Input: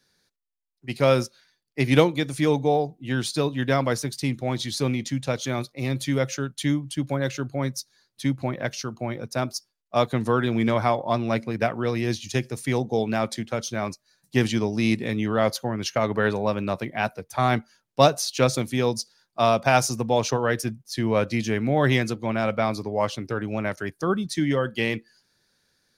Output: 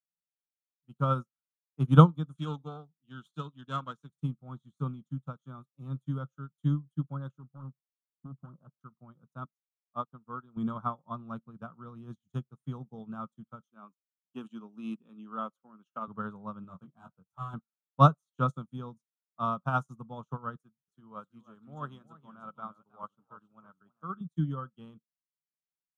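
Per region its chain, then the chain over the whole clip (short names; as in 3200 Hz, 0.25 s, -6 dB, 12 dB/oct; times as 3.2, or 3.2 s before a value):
2.35–4.1 self-modulated delay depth 0.11 ms + weighting filter D
7.38–8.81 LPF 1100 Hz 24 dB/oct + hard clip -24 dBFS
9.45–10.57 HPF 440 Hz 6 dB/oct + tilt -2 dB/oct + upward expander, over -34 dBFS
13.64–16.08 HPF 220 Hz 24 dB/oct + bell 2600 Hz +11.5 dB 0.28 oct
16.62–17.54 hard clip -22 dBFS + doubler 22 ms -6 dB
20.56–24.21 HPF 410 Hz 6 dB/oct + warbling echo 0.321 s, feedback 32%, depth 195 cents, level -9 dB
whole clip: EQ curve 110 Hz 0 dB, 160 Hz +13 dB, 340 Hz -6 dB, 700 Hz -7 dB, 1300 Hz +11 dB, 2000 Hz -29 dB, 3300 Hz -6 dB, 4800 Hz -28 dB, 6900 Hz -8 dB, 13000 Hz -14 dB; upward expander 2.5:1, over -39 dBFS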